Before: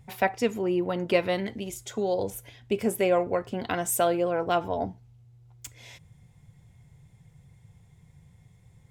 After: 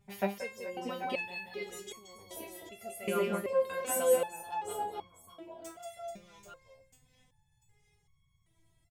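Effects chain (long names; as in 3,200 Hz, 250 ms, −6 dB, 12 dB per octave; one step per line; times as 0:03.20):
0:00.95–0:02.35: surface crackle 510 per second −50 dBFS
reverse bouncing-ball delay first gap 180 ms, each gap 1.4×, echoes 5
step-sequenced resonator 2.6 Hz 200–1,100 Hz
level +7 dB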